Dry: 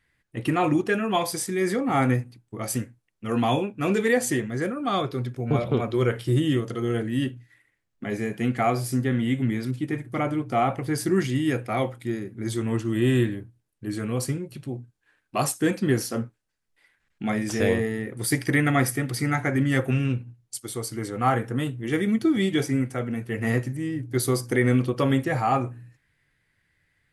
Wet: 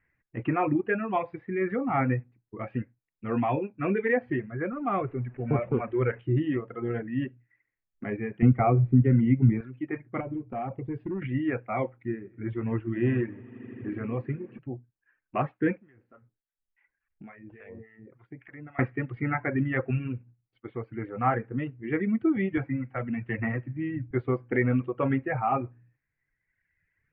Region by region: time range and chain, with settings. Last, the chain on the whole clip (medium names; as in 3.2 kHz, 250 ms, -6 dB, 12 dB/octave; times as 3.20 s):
4.72–6.20 s: jump at every zero crossing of -37 dBFS + low-pass 3 kHz 24 dB/octave
8.42–9.61 s: RIAA curve playback + band-stop 1.7 kHz, Q 7.5 + three bands compressed up and down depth 40%
10.20–11.22 s: peaking EQ 1.6 kHz -13 dB 1.4 oct + compression 5:1, threshold -24 dBFS + hard clipper -23.5 dBFS
11.93–14.59 s: treble shelf 7.4 kHz -10 dB + echo with a slow build-up 80 ms, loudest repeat 5, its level -18 dB
15.77–18.79 s: compression 2.5:1, threshold -43 dBFS + harmonic tremolo 3.5 Hz, crossover 780 Hz
22.57–24.11 s: peaking EQ 420 Hz -11 dB 0.33 oct + three bands compressed up and down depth 100%
whole clip: reverb removal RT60 1.4 s; steep low-pass 2.5 kHz 48 dB/octave; trim -2.5 dB